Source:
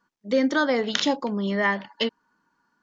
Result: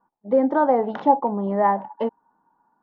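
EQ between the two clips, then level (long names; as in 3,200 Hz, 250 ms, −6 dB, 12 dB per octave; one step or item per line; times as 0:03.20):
low-pass with resonance 830 Hz, resonance Q 4.9
0.0 dB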